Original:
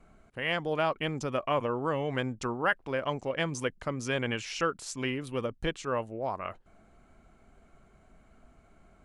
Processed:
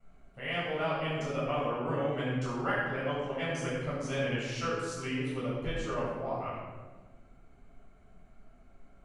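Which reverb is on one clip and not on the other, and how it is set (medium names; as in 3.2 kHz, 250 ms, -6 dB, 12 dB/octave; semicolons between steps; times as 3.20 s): simulated room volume 940 m³, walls mixed, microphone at 6.9 m; trim -14.5 dB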